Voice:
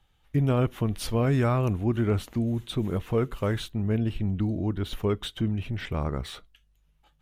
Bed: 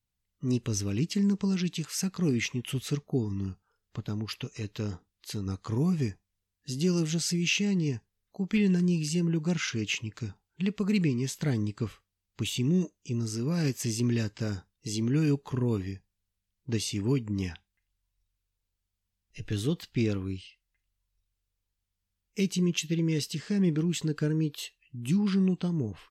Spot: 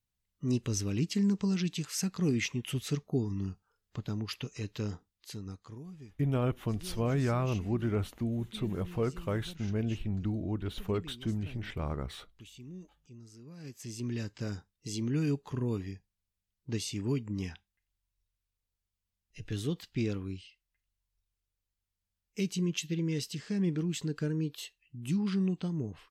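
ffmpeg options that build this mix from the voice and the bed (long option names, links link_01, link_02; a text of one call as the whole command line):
ffmpeg -i stem1.wav -i stem2.wav -filter_complex "[0:a]adelay=5850,volume=-6dB[link_01];[1:a]volume=14dB,afade=type=out:start_time=4.87:duration=0.96:silence=0.11885,afade=type=in:start_time=13.59:duration=0.88:silence=0.158489[link_02];[link_01][link_02]amix=inputs=2:normalize=0" out.wav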